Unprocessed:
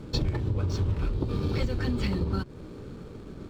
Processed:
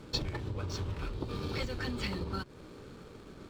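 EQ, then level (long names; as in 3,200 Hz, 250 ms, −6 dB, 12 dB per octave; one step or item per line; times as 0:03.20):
low-shelf EQ 490 Hz −10.5 dB
0.0 dB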